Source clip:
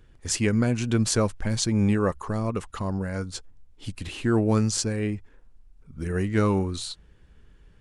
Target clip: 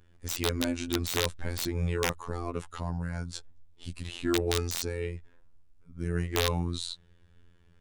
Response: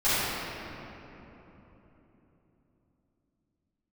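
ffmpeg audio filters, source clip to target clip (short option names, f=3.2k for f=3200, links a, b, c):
-af "afftfilt=real='hypot(re,im)*cos(PI*b)':imag='0':win_size=2048:overlap=0.75,aeval=exprs='(mod(4.73*val(0)+1,2)-1)/4.73':c=same,adynamicequalizer=threshold=0.002:dfrequency=3700:dqfactor=5.6:tfrequency=3700:tqfactor=5.6:attack=5:release=100:ratio=0.375:range=3.5:mode=boostabove:tftype=bell,volume=-1.5dB"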